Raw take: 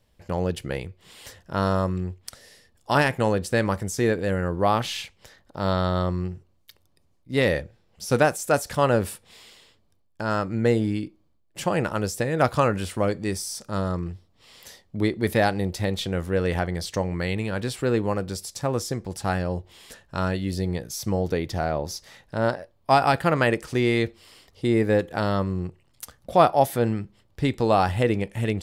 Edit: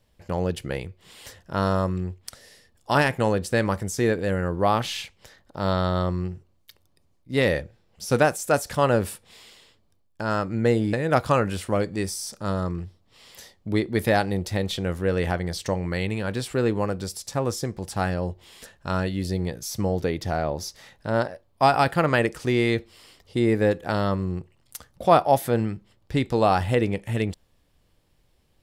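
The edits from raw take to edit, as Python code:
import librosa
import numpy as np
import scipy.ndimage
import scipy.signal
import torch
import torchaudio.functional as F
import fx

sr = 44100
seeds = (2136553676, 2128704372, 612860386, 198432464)

y = fx.edit(x, sr, fx.cut(start_s=10.93, length_s=1.28), tone=tone)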